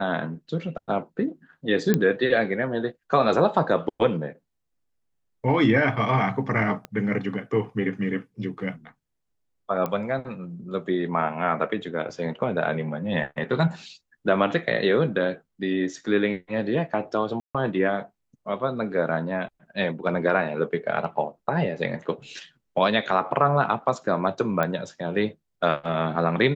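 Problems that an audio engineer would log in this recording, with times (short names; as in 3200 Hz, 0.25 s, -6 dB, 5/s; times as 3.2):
1.94 pop -8 dBFS
6.85 pop -20 dBFS
9.86 pop -15 dBFS
12.09–12.1 gap 5.5 ms
17.4–17.55 gap 0.146 s
24.63 pop -12 dBFS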